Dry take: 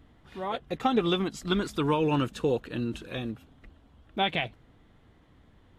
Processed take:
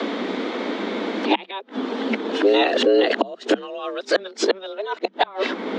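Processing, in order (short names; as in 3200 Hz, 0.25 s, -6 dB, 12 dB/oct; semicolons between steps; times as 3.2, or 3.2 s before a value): whole clip reversed; LPF 5600 Hz 24 dB/oct; low shelf 79 Hz -7 dB; flipped gate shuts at -22 dBFS, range -34 dB; frequency shift +190 Hz; maximiser +30 dB; three-band squash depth 70%; gain -5 dB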